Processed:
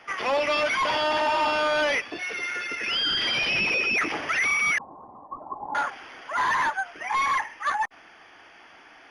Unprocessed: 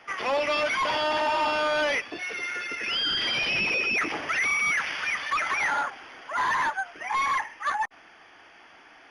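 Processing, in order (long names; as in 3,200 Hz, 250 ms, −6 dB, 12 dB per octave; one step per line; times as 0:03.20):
0:04.78–0:05.75: Chebyshev low-pass with heavy ripple 1,100 Hz, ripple 6 dB
level +1.5 dB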